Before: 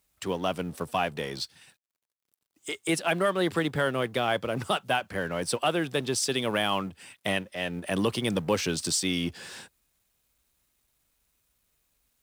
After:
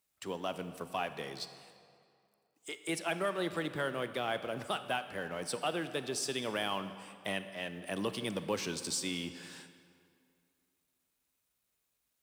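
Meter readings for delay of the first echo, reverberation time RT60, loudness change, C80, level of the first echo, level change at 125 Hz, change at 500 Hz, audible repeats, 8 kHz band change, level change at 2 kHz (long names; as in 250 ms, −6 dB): no echo audible, 2.4 s, −8.0 dB, 12.0 dB, no echo audible, −11.0 dB, −8.0 dB, no echo audible, −8.0 dB, −7.5 dB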